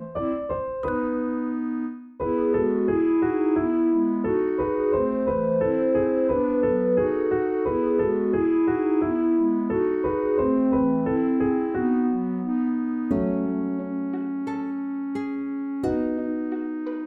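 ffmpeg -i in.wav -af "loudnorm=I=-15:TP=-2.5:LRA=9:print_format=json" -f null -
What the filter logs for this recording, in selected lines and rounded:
"input_i" : "-24.5",
"input_tp" : "-11.0",
"input_lra" : "5.6",
"input_thresh" : "-34.5",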